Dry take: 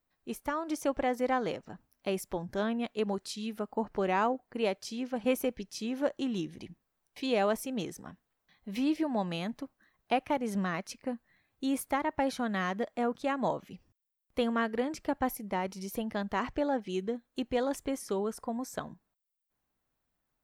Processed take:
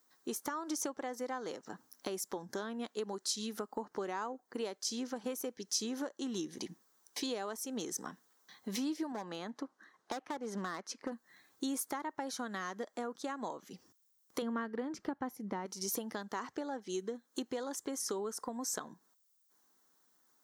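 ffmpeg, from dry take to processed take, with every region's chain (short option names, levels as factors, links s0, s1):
-filter_complex "[0:a]asettb=1/sr,asplit=3[s0][s1][s2];[s0]atrim=end=9.124[s3];[s1]atrim=start=9.12:end=11.12,asetpts=PTS-STARTPTS,afade=t=in:d=0.004:c=qsin,afade=t=out:st=1.996:d=0.004:c=qsin,highpass=f=220:p=1,aemphasis=mode=reproduction:type=75fm,asoftclip=type=hard:threshold=0.0376[s4];[s2]atrim=start=11.116[s5];[s3][s4]acrossfade=d=0.004:c1=hsin:c2=qsin[s6];[s6][s5]acrossfade=d=0.004:c1=qsin:c2=hsin,asettb=1/sr,asplit=3[s7][s8][s9];[s7]atrim=end=14.424[s10];[s8]atrim=start=14.42:end=15.66,asetpts=PTS-STARTPTS,afade=t=in:d=0.004:c=qsin,afade=t=out:st=1.236:d=0.004:c=qsin,bass=f=250:g=10,treble=f=4000:g=-13,bandreject=f=7800:w=15[s11];[s9]atrim=start=15.656[s12];[s10][s11]acrossfade=d=0.004:c1=hsin:c2=qsin[s13];[s13][s12]acrossfade=d=0.004:c1=qsin:c2=hsin,highpass=350,acompressor=threshold=0.00398:ratio=4,equalizer=f=630:t=o:w=0.67:g=-9,equalizer=f=2500:t=o:w=0.67:g=-12,equalizer=f=6300:t=o:w=0.67:g=7,volume=4.22"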